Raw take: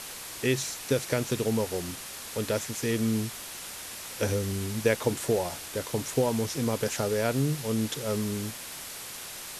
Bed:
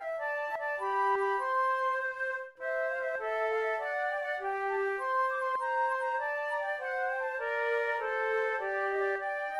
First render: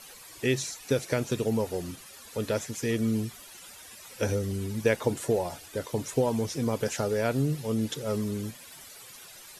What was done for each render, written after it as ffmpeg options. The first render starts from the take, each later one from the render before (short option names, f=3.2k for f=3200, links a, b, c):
-af "afftdn=nr=13:nf=-41"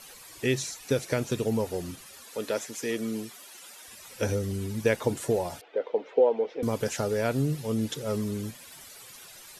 -filter_complex "[0:a]asettb=1/sr,asplit=3[a][b][c];[a]atrim=end=2.244[d];[b]atrim=start=2.24:end=3.88,asetpts=PTS-STARTPTS,afade=t=in:d=0.004:c=qsin,afade=t=out:st=1.636:d=0.004:c=qsin,highpass=270[e];[c]atrim=start=3.876[f];[d][e]acrossfade=d=0.004:c1=hsin:c2=qsin[g];[g][f]acrossfade=d=0.004:c1=qsin:c2=hsin,asettb=1/sr,asplit=3[h][i][j];[h]atrim=end=5.614[k];[i]atrim=start=5.61:end=6.63,asetpts=PTS-STARTPTS,afade=t=in:d=0.004:c=qsin,afade=t=out:st=1.016:d=0.004:c=qsin,highpass=f=310:w=0.5412,highpass=f=310:w=1.3066,equalizer=f=320:t=q:w=4:g=-4,equalizer=f=480:t=q:w=4:g=9,equalizer=f=770:t=q:w=4:g=4,equalizer=f=1.1k:t=q:w=4:g=-6,equalizer=f=1.7k:t=q:w=4:g=-5,equalizer=f=2.6k:t=q:w=4:g=-3,lowpass=f=2.8k:w=0.5412,lowpass=f=2.8k:w=1.3066[l];[j]atrim=start=6.626[m];[k][l]acrossfade=d=0.004:c1=hsin:c2=qsin[n];[n][m]acrossfade=d=0.004:c1=qsin:c2=hsin"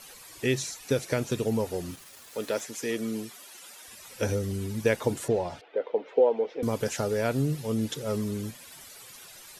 -filter_complex "[0:a]asettb=1/sr,asplit=3[a][b][c];[a]atrim=end=1.914[d];[b]atrim=start=1.91:end=2.61,asetpts=PTS-STARTPTS,afade=t=in:d=0.004:c=qsin,afade=t=out:st=0.696:d=0.004:c=qsin,aeval=exprs='val(0)*gte(abs(val(0)),0.00473)':c=same[e];[c]atrim=start=2.606[f];[d][e]acrossfade=d=0.004:c1=hsin:c2=qsin[g];[g][f]acrossfade=d=0.004:c1=qsin:c2=hsin,asettb=1/sr,asplit=3[h][i][j];[h]atrim=end=5.284[k];[i]atrim=start=5.28:end=6.08,asetpts=PTS-STARTPTS,afade=t=in:d=0.004:c=qsin,afade=t=out:st=0.796:d=0.004:c=qsin,lowpass=4.4k[l];[j]atrim=start=6.076[m];[k][l]acrossfade=d=0.004:c1=hsin:c2=qsin[n];[n][m]acrossfade=d=0.004:c1=qsin:c2=hsin"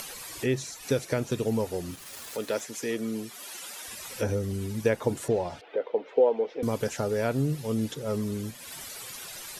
-filter_complex "[0:a]acrossover=split=1700[a][b];[b]alimiter=level_in=3.5dB:limit=-24dB:level=0:latency=1:release=407,volume=-3.5dB[c];[a][c]amix=inputs=2:normalize=0,acompressor=mode=upward:threshold=-32dB:ratio=2.5"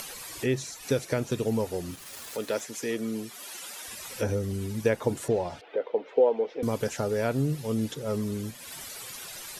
-af anull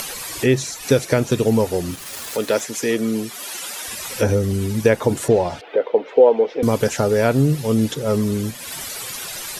-af "volume=10.5dB,alimiter=limit=-3dB:level=0:latency=1"